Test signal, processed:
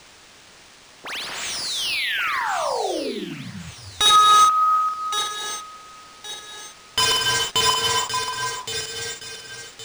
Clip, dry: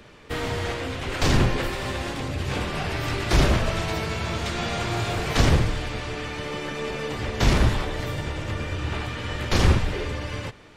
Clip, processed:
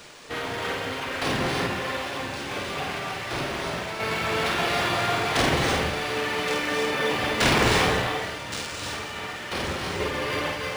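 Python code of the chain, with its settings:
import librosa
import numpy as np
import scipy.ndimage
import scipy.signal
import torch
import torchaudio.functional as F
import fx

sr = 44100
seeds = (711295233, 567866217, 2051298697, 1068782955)

p1 = scipy.signal.medfilt(x, 5)
p2 = fx.dereverb_blind(p1, sr, rt60_s=0.7)
p3 = fx.highpass(p2, sr, hz=440.0, slope=6)
p4 = fx.rider(p3, sr, range_db=3, speed_s=0.5)
p5 = p3 + (p4 * 10.0 ** (-2.5 / 20.0))
p6 = fx.tremolo_random(p5, sr, seeds[0], hz=1.0, depth_pct=70)
p7 = (np.mod(10.0 ** (14.5 / 20.0) * p6 + 1.0, 2.0) - 1.0) / 10.0 ** (14.5 / 20.0)
p8 = fx.doubler(p7, sr, ms=50.0, db=-3.5)
p9 = fx.rev_gated(p8, sr, seeds[1], gate_ms=350, shape='rising', drr_db=0.0)
p10 = fx.quant_dither(p9, sr, seeds[2], bits=8, dither='triangular')
p11 = fx.echo_wet_highpass(p10, sr, ms=1118, feedback_pct=38, hz=4600.0, wet_db=-5.5)
p12 = np.interp(np.arange(len(p11)), np.arange(len(p11))[::3], p11[::3])
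y = p12 * 10.0 ** (1.5 / 20.0)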